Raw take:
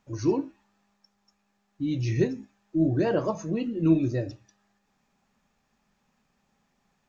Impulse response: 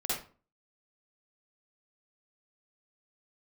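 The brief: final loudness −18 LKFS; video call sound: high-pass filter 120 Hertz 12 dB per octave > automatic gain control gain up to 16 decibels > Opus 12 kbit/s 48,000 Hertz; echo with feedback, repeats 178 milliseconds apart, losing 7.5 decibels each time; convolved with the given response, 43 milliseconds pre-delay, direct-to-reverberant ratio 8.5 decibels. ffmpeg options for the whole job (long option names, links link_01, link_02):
-filter_complex "[0:a]aecho=1:1:178|356|534|712|890:0.422|0.177|0.0744|0.0312|0.0131,asplit=2[link_01][link_02];[1:a]atrim=start_sample=2205,adelay=43[link_03];[link_02][link_03]afir=irnorm=-1:irlink=0,volume=-14.5dB[link_04];[link_01][link_04]amix=inputs=2:normalize=0,highpass=120,dynaudnorm=maxgain=16dB,volume=8.5dB" -ar 48000 -c:a libopus -b:a 12k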